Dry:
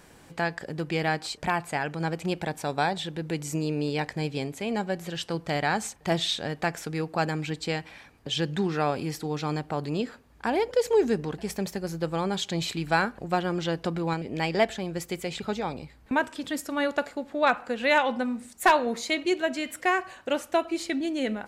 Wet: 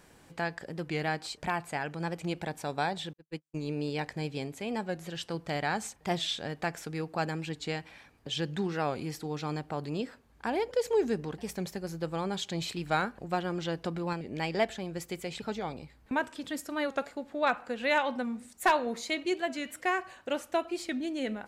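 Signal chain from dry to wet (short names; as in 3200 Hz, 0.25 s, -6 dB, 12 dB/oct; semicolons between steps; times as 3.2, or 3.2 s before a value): 3.13–3.69 gate -27 dBFS, range -59 dB; record warp 45 rpm, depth 100 cents; gain -5 dB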